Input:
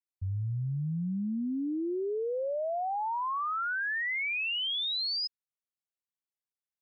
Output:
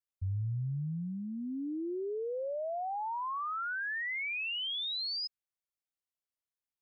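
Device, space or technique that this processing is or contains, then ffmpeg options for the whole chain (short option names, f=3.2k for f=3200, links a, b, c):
low shelf boost with a cut just above: -af "lowshelf=f=94:g=7,equalizer=f=210:t=o:w=0.62:g=-4,volume=-4dB"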